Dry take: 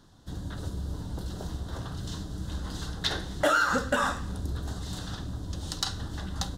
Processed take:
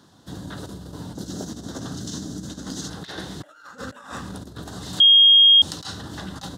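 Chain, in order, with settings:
0:01.15–0:02.90: graphic EQ with 15 bands 250 Hz +8 dB, 1,000 Hz −5 dB, 2,500 Hz −5 dB, 6,300 Hz +9 dB
compressor whose output falls as the input rises −34 dBFS, ratio −0.5
high-pass filter 140 Hz 12 dB per octave
0:05.00–0:05.62: beep over 3,250 Hz −12.5 dBFS
level +3.5 dB

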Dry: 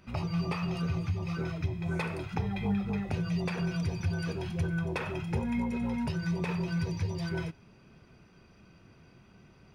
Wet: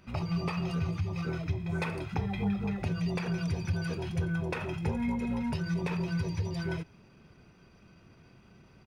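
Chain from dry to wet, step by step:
tempo change 1.1×

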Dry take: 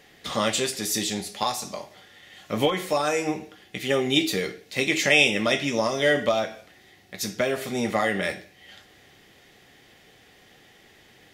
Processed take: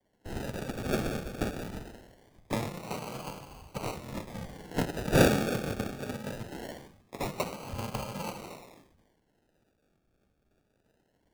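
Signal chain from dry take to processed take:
samples in bit-reversed order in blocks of 128 samples
in parallel at −3 dB: soft clipping −15.5 dBFS, distortion −15 dB
on the sum: high-pass filter 210 Hz 6 dB per octave
on a send at −6.5 dB: convolution reverb RT60 2.1 s, pre-delay 95 ms
on the sum: treble cut that deepens with the level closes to 1,600 Hz, closed at −15.5 dBFS
sample-and-hold swept by an LFO 34×, swing 60% 0.22 Hz
multiband upward and downward expander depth 100%
level −2.5 dB

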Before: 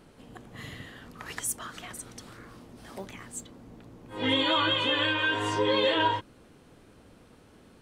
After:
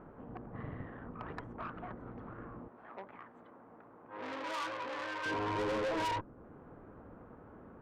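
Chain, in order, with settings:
low-pass filter 1,300 Hz 24 dB per octave
tube saturation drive 36 dB, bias 0.55
0:02.68–0:05.26: high-pass filter 1,000 Hz 6 dB per octave
one half of a high-frequency compander encoder only
level +3.5 dB

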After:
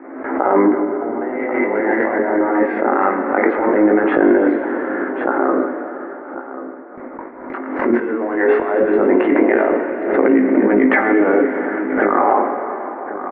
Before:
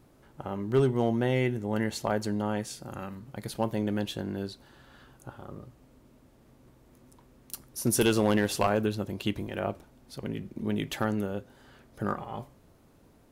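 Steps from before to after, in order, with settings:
0:00.58–0:02.59: feedback delay that plays each chunk backwards 101 ms, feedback 60%, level −1.5 dB
Chebyshev band-pass filter 250–2,100 Hz, order 5
mains-hum notches 60/120/180/240/300/360/420/480/540 Hz
noise gate with hold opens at −51 dBFS
compressor whose output falls as the input rises −40 dBFS, ratio −1
chorus effect 0.19 Hz, delay 15 ms, depth 7.4 ms
single-tap delay 1,087 ms −14 dB
dense smooth reverb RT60 4.2 s, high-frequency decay 0.9×, DRR 7 dB
boost into a limiter +29 dB
background raised ahead of every attack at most 56 dB per second
level −3 dB

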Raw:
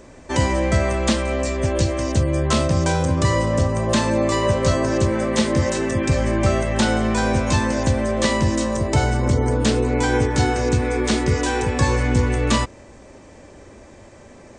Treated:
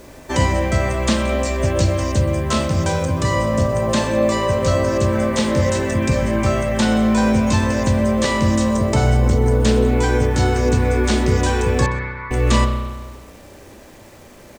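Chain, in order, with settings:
speech leveller within 3 dB 0.5 s
bit-depth reduction 8 bits, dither none
0:11.86–0:12.31: linear-phase brick-wall band-pass 840–2,400 Hz
on a send: single-tap delay 127 ms −20.5 dB
on the sum: spring reverb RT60 1.4 s, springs 32 ms, chirp 55 ms, DRR 4.5 dB

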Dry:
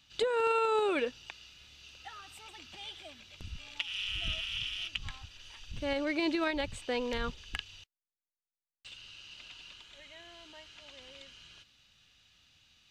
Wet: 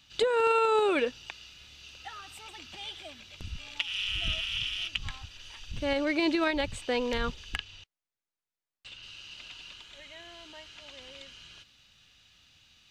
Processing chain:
0:07.56–0:09.03: high-shelf EQ 7,000 Hz −11.5 dB
level +4 dB

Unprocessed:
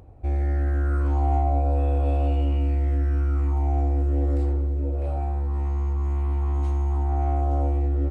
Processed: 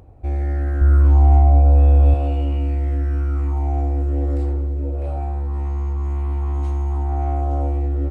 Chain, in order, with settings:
0:00.81–0:02.14: low-shelf EQ 120 Hz +11.5 dB
level +2 dB

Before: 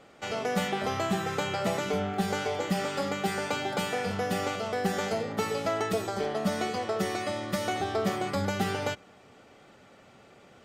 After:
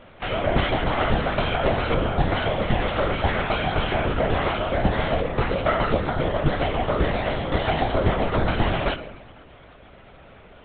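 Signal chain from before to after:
on a send at −10 dB: convolution reverb RT60 1.4 s, pre-delay 7 ms
on the sum: linear-prediction vocoder at 8 kHz whisper
level +7.5 dB

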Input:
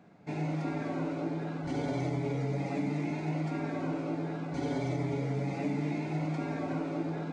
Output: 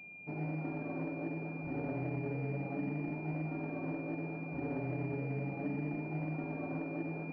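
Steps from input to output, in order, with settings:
switching amplifier with a slow clock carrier 2,400 Hz
level −5 dB

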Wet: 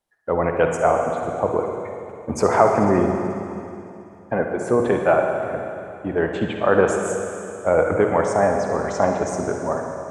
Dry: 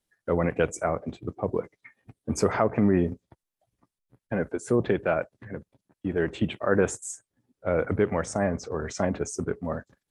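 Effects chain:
automatic gain control gain up to 3 dB
parametric band 830 Hz +12 dB 1.6 octaves
convolution reverb RT60 2.8 s, pre-delay 48 ms, DRR 2.5 dB
level −3 dB

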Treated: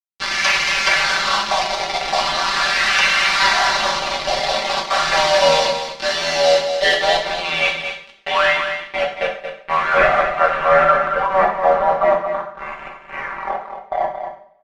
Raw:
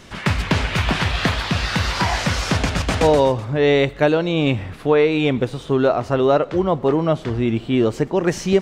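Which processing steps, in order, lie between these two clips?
turntable brake at the end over 1.04 s
Chebyshev high-pass filter 530 Hz, order 8
parametric band 8,000 Hz −6 dB 2.1 octaves
notch filter 890 Hz, Q 12
in parallel at −1 dB: downward compressor 6 to 1, threshold −34 dBFS, peak gain reduction 18.5 dB
on the sum: auto-filter low-pass sine 0.69 Hz 680–2,400 Hz
wave folding −11.5 dBFS
bit reduction 4 bits
low-pass filter sweep 4,600 Hz → 1,100 Hz, 0:03.84–0:07.21
time stretch by overlap-add 1.7×, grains 25 ms
single-tap delay 227 ms −8.5 dB
coupled-rooms reverb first 0.51 s, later 1.6 s, from −26 dB, DRR −0.5 dB

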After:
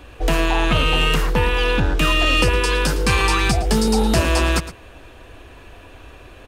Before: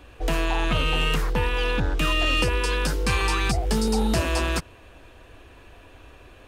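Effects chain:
single-tap delay 112 ms −14.5 dB
level +6 dB

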